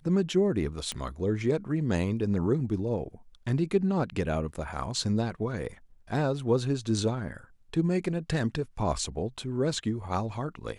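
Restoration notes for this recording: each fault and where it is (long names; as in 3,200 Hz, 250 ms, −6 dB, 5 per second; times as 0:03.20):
0:00.92: click −18 dBFS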